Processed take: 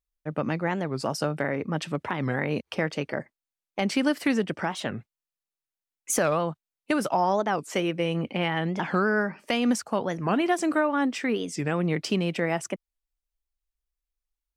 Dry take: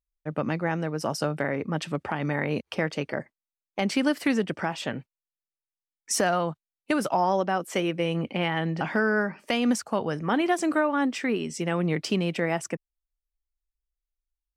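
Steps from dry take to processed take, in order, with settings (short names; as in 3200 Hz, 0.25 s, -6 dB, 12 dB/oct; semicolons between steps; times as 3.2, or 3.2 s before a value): record warp 45 rpm, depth 250 cents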